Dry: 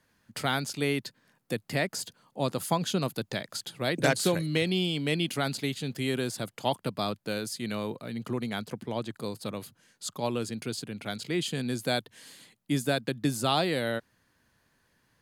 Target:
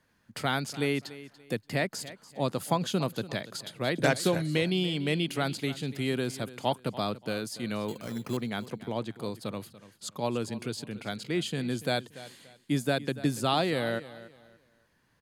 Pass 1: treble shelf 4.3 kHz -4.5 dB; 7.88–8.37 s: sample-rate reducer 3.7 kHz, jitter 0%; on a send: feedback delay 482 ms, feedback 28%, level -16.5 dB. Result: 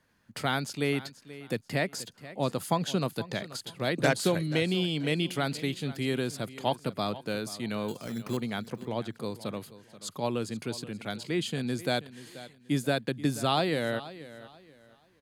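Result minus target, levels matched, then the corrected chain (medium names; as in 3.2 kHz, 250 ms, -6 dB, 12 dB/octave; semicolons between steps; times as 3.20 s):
echo 194 ms late
treble shelf 4.3 kHz -4.5 dB; 7.88–8.37 s: sample-rate reducer 3.7 kHz, jitter 0%; on a send: feedback delay 288 ms, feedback 28%, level -16.5 dB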